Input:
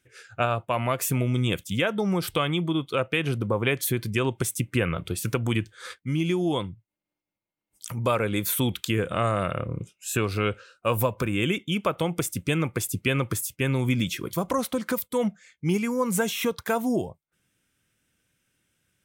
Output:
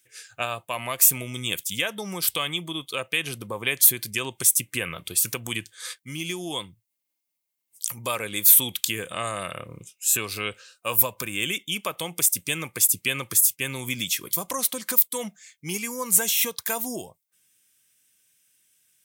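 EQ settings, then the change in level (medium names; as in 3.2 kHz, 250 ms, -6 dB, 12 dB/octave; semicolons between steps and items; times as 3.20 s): tone controls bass +4 dB, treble +3 dB; tilt EQ +4 dB/octave; band-stop 1.4 kHz, Q 8; -3.5 dB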